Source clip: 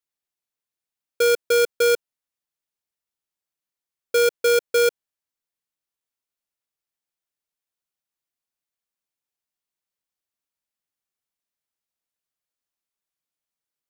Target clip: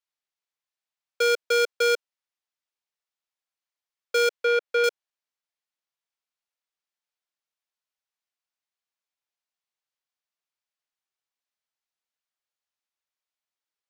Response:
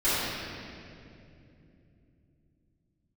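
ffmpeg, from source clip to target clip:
-filter_complex "[0:a]acrossover=split=490 6800:gain=0.2 1 0.251[link_01][link_02][link_03];[link_01][link_02][link_03]amix=inputs=3:normalize=0,asettb=1/sr,asplit=3[link_04][link_05][link_06];[link_04]atrim=end=4.404[link_07];[link_05]atrim=start=4.4:end=4.84,asetpts=PTS-STARTPTS,afade=type=in:duration=0.004:curve=qsin,afade=type=out:start_time=0.436:duration=0.004:curve=qsin,acrossover=split=3500[link_08][link_09];[link_09]acompressor=threshold=-50dB:ratio=4:attack=1:release=60[link_10];[link_08][link_10]amix=inputs=2:normalize=0[link_11];[link_06]atrim=start=4.836[link_12];[link_07][link_11]acrossfade=duration=0.004:curve1=hsin:curve2=qsin[link_13];[link_13][link_12]acrossfade=duration=0.004:curve1=qsin:curve2=hsin"

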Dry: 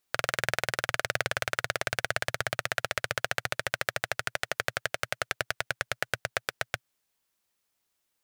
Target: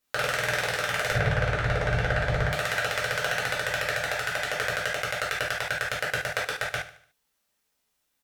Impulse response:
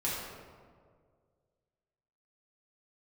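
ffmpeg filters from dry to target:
-filter_complex "[0:a]asettb=1/sr,asplit=3[link_01][link_02][link_03];[link_01]atrim=end=1.114[link_04];[link_02]atrim=start=1.11:end=2.49,asetpts=PTS-STARTPTS,afade=type=in:duration=0.004:curve=qsin,afade=type=out:start_time=1.376:duration=0.004:curve=qsin,aemphasis=mode=reproduction:type=riaa[link_05];[link_03]atrim=start=2.486[link_06];[link_04][link_05]acrossfade=duration=0.004:curve1=hsin:curve2=qsin[link_07];[link_07][link_06]acrossfade=duration=0.004:curve1=qsin:curve2=hsin,aecho=1:1:74|148|222|296:0.2|0.0838|0.0352|0.0148[link_08];[1:a]atrim=start_sample=2205,afade=type=out:start_time=0.17:duration=0.01,atrim=end_sample=7938,asetrate=70560,aresample=44100[link_09];[link_08][link_09]afir=irnorm=-1:irlink=0,volume=3dB"

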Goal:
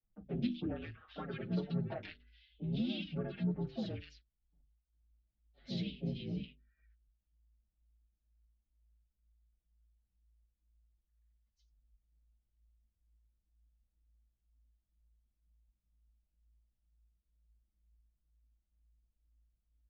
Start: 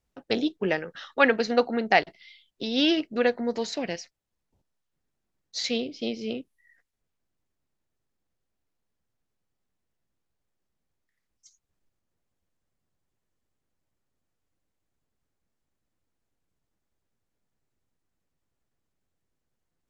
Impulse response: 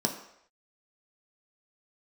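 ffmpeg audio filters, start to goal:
-filter_complex "[0:a]bandreject=frequency=50:width_type=h:width=6,bandreject=frequency=100:width_type=h:width=6,bandreject=frequency=150:width_type=h:width=6,bandreject=frequency=200:width_type=h:width=6,bandreject=frequency=250:width_type=h:width=6,bandreject=frequency=300:width_type=h:width=6,bandreject=frequency=350:width_type=h:width=6,bandreject=frequency=400:width_type=h:width=6,bandreject=frequency=450:width_type=h:width=6,bandreject=frequency=500:width_type=h:width=6,asplit=4[link_01][link_02][link_03][link_04];[link_02]asetrate=33038,aresample=44100,atempo=1.33484,volume=-16dB[link_05];[link_03]asetrate=37084,aresample=44100,atempo=1.18921,volume=-10dB[link_06];[link_04]asetrate=55563,aresample=44100,atempo=0.793701,volume=-10dB[link_07];[link_01][link_05][link_06][link_07]amix=inputs=4:normalize=0,acompressor=threshold=-24dB:ratio=6,equalizer=frequency=500:width_type=o:width=1:gain=-10,equalizer=frequency=1000:width_type=o:width=1:gain=-5,equalizer=frequency=2000:width_type=o:width=1:gain=-11,acrossover=split=170|1700[link_08][link_09][link_10];[link_08]adelay=30[link_11];[link_10]adelay=130[link_12];[link_11][link_09][link_12]amix=inputs=3:normalize=0,afreqshift=-57,lowpass=frequency=3300:width=0.5412,lowpass=frequency=3300:width=1.3066,lowshelf=frequency=280:gain=8,bandreject=frequency=990:width=6.1,asplit=2[link_13][link_14];[link_14]adelay=5.7,afreqshift=-2.1[link_15];[link_13][link_15]amix=inputs=2:normalize=1,volume=-3dB"

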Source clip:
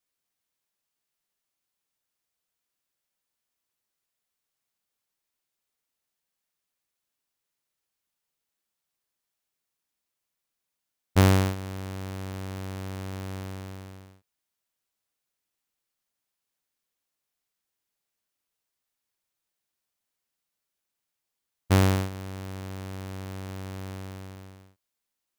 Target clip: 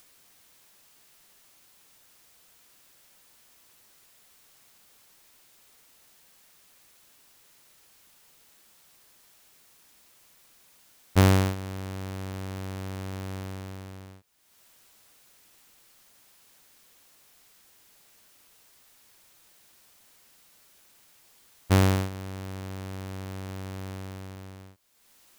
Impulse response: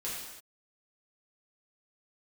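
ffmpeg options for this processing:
-af "acompressor=mode=upward:threshold=-38dB:ratio=2.5"

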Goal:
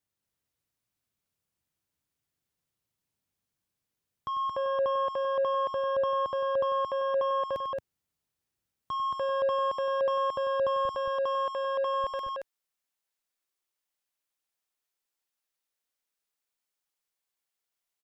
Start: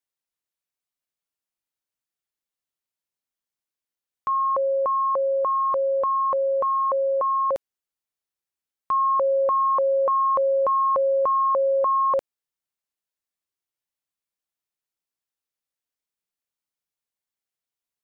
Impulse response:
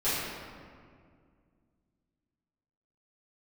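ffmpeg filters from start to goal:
-af "asoftclip=type=tanh:threshold=-23.5dB,alimiter=level_in=7.5dB:limit=-24dB:level=0:latency=1,volume=-7.5dB,asetnsamples=nb_out_samples=441:pad=0,asendcmd='10.85 equalizer g 3;12.04 equalizer g -8.5',equalizer=frequency=100:width_type=o:width=2.7:gain=14.5,aecho=1:1:96.21|224.5:0.316|0.794,volume=1dB"

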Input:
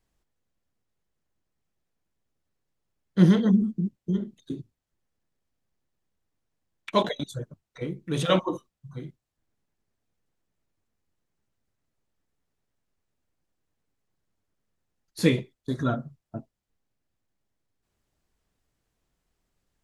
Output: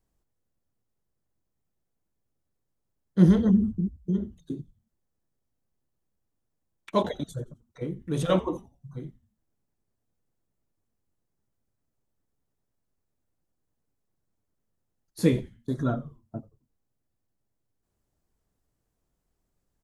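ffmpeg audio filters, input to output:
ffmpeg -i in.wav -filter_complex "[0:a]equalizer=frequency=2800:width=0.57:gain=-8.5,asplit=4[link_01][link_02][link_03][link_04];[link_02]adelay=88,afreqshift=-120,volume=-20dB[link_05];[link_03]adelay=176,afreqshift=-240,volume=-29.4dB[link_06];[link_04]adelay=264,afreqshift=-360,volume=-38.7dB[link_07];[link_01][link_05][link_06][link_07]amix=inputs=4:normalize=0" out.wav

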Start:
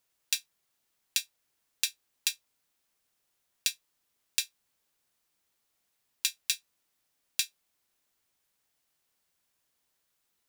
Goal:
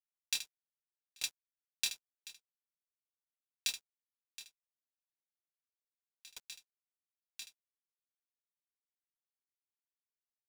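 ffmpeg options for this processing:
ffmpeg -i in.wav -filter_complex "[0:a]highshelf=frequency=2800:gain=6,acontrast=57,aeval=exprs='sgn(val(0))*max(abs(val(0))-0.0188,0)':channel_layout=same,acrusher=bits=7:dc=4:mix=0:aa=0.000001,highshelf=frequency=8500:gain=-8.5,asplit=2[link_01][link_02];[link_02]aecho=0:1:26|77:0.447|0.631[link_03];[link_01][link_03]amix=inputs=2:normalize=0,alimiter=limit=-12dB:level=0:latency=1,aeval=exprs='val(0)*pow(10,-39*if(lt(mod(3.3*n/s,1),2*abs(3.3)/1000),1-mod(3.3*n/s,1)/(2*abs(3.3)/1000),(mod(3.3*n/s,1)-2*abs(3.3)/1000)/(1-2*abs(3.3)/1000))/20)':channel_layout=same,volume=-2dB" out.wav

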